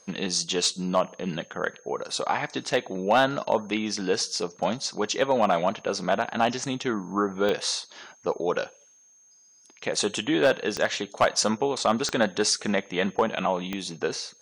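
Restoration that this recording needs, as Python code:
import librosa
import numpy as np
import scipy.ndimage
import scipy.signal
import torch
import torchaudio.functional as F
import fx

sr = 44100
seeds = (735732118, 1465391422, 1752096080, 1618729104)

y = fx.fix_declip(x, sr, threshold_db=-12.0)
y = fx.fix_declick_ar(y, sr, threshold=10.0)
y = fx.notch(y, sr, hz=6400.0, q=30.0)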